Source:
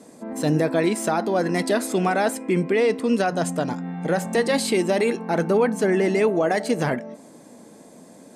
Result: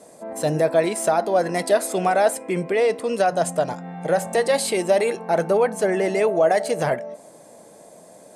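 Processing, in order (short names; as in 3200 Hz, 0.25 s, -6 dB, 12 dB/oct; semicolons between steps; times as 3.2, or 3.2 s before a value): fifteen-band EQ 250 Hz -10 dB, 630 Hz +8 dB, 10000 Hz +6 dB; gain -1 dB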